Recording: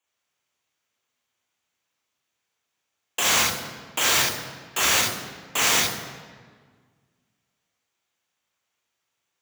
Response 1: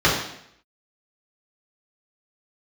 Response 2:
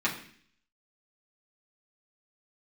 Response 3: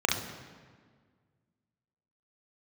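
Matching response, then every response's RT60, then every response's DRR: 3; 0.70 s, 0.55 s, 1.7 s; -7.0 dB, -6.5 dB, -2.0 dB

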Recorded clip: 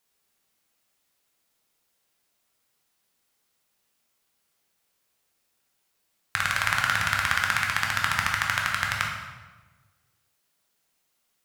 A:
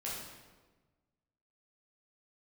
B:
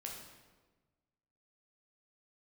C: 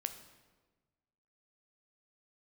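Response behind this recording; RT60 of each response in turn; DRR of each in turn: B; 1.3 s, 1.3 s, 1.3 s; -6.5 dB, -1.0 dB, 8.0 dB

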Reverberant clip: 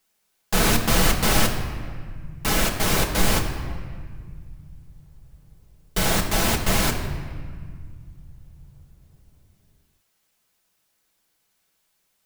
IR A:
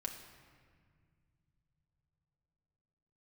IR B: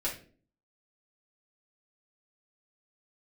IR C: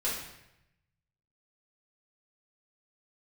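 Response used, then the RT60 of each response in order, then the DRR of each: A; 2.0 s, no single decay rate, 0.85 s; 0.5 dB, -7.5 dB, -8.0 dB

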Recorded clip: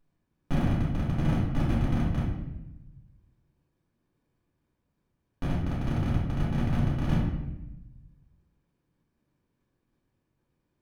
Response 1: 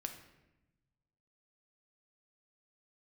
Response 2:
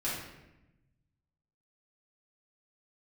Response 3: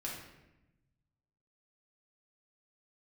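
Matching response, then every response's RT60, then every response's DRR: 2; 0.95 s, 0.95 s, 0.95 s; 4.5 dB, -9.0 dB, -4.5 dB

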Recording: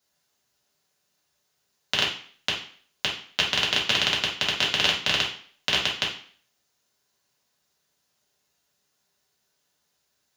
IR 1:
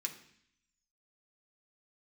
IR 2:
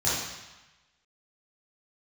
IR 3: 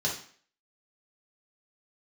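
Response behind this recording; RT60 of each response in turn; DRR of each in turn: 3; 0.65 s, 1.1 s, 0.50 s; 2.0 dB, -10.0 dB, -4.5 dB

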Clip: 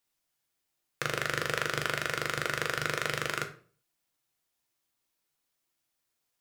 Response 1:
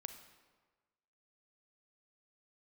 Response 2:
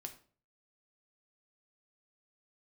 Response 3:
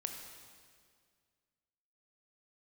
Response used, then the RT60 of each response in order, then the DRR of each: 2; 1.4 s, 0.45 s, 2.0 s; 8.0 dB, 4.5 dB, 3.5 dB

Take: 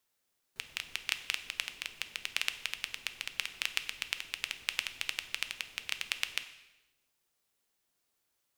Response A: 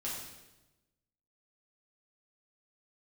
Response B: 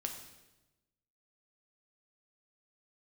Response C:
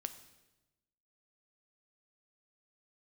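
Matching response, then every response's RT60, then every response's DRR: C; 1.0 s, 1.0 s, 1.0 s; -7.0 dB, 3.0 dB, 9.0 dB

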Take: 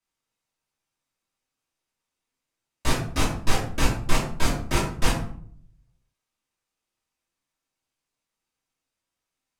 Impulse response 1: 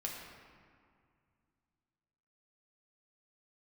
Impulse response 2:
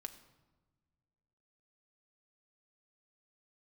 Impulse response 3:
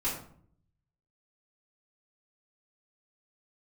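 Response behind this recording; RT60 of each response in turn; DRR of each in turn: 3; 2.1 s, 1.3 s, 0.60 s; -2.0 dB, 6.5 dB, -10.0 dB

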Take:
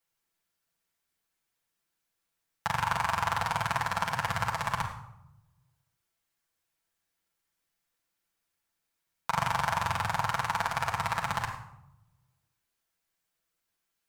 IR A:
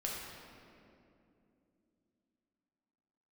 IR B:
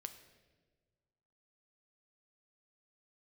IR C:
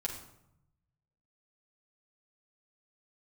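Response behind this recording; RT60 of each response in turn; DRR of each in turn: C; 2.7 s, 1.5 s, 0.80 s; -4.0 dB, 8.0 dB, -2.5 dB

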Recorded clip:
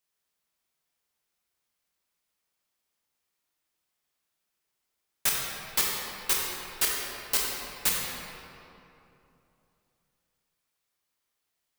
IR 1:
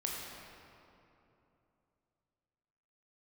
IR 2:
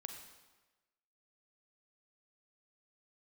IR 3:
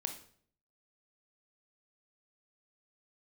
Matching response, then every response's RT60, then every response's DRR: 1; 3.0 s, 1.2 s, 0.55 s; -3.0 dB, 4.0 dB, 5.0 dB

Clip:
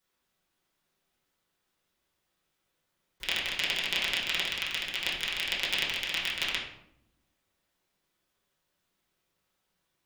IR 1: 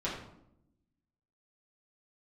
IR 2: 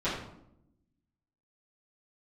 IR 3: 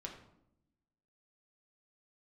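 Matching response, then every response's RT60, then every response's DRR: 1; 0.75 s, 0.75 s, 0.80 s; -8.0 dB, -13.5 dB, 0.0 dB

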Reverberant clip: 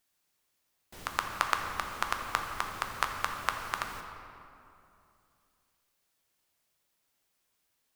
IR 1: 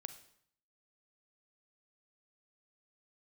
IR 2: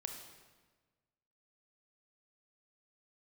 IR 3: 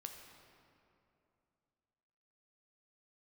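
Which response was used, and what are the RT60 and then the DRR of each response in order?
3; 0.65 s, 1.4 s, 2.7 s; 10.0 dB, 4.0 dB, 3.0 dB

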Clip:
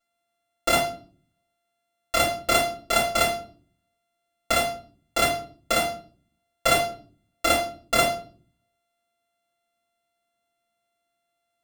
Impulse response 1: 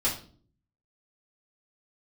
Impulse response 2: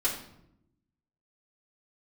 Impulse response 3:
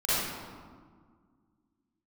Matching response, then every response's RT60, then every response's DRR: 1; 0.45 s, 0.80 s, 1.8 s; -7.5 dB, -9.0 dB, -13.5 dB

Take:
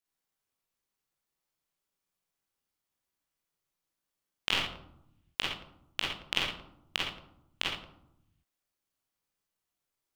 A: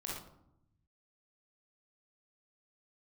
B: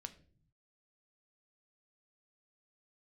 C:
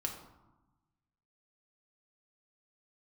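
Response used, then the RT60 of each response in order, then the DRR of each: A; 0.75 s, 0.45 s, 1.1 s; -5.0 dB, 8.0 dB, 1.0 dB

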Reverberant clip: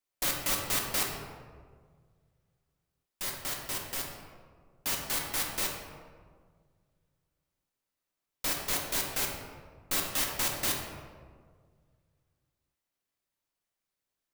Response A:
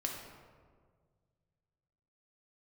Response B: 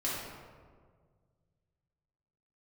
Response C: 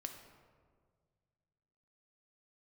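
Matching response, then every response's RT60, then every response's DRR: A; 1.8 s, 1.7 s, 1.8 s; -0.5 dB, -8.0 dB, 4.5 dB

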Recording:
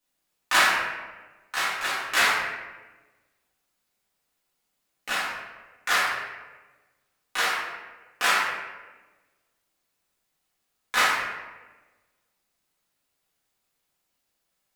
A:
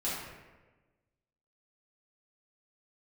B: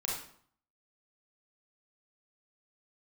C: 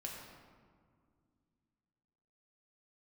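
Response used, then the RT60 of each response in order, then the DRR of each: A; 1.2 s, 0.60 s, 2.0 s; -9.5 dB, -4.5 dB, -2.0 dB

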